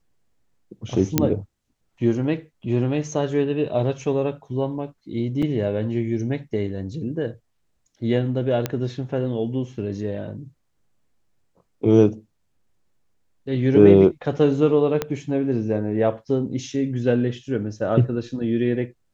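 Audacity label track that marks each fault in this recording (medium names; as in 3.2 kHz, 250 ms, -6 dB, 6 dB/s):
1.180000	1.180000	pop -2 dBFS
5.420000	5.430000	dropout 5.5 ms
8.660000	8.660000	pop -9 dBFS
15.020000	15.020000	pop -9 dBFS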